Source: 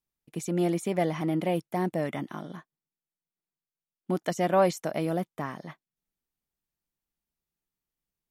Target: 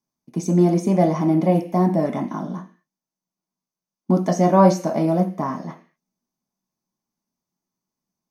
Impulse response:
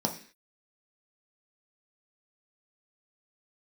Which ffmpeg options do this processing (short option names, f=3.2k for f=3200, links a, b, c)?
-filter_complex "[0:a]equalizer=f=240:w=0.34:g=-3.5[a];[1:a]atrim=start_sample=2205,asetrate=48510,aresample=44100[b];[a][b]afir=irnorm=-1:irlink=0"